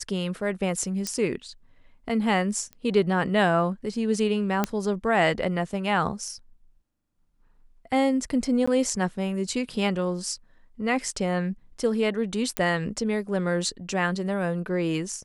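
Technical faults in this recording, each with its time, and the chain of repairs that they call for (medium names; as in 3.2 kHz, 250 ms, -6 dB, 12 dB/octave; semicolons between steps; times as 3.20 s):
1.07 s: pop -15 dBFS
2.73 s: pop -26 dBFS
4.64 s: pop -9 dBFS
8.66–8.68 s: dropout 15 ms
12.57 s: pop -9 dBFS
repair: de-click; interpolate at 8.66 s, 15 ms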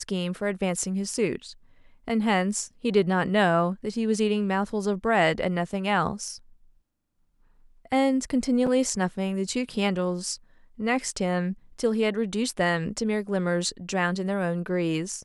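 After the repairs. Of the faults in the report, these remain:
nothing left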